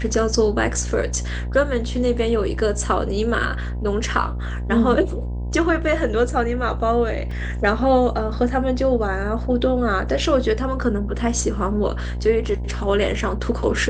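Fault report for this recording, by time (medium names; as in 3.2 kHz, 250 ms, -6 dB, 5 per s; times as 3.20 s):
buzz 60 Hz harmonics 17 -26 dBFS
7.31 s: dropout 3.1 ms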